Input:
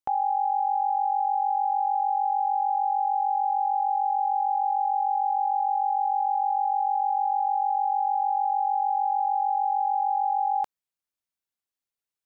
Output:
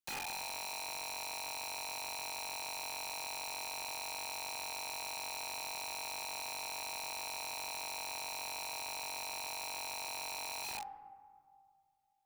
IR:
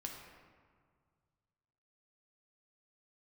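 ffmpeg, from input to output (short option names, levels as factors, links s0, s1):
-filter_complex "[0:a]equalizer=f=680:w=1.7:g=-13[s0];[1:a]atrim=start_sample=2205[s1];[s0][s1]afir=irnorm=-1:irlink=0,aeval=exprs='(mod(89.1*val(0)+1,2)-1)/89.1':c=same,volume=1.26"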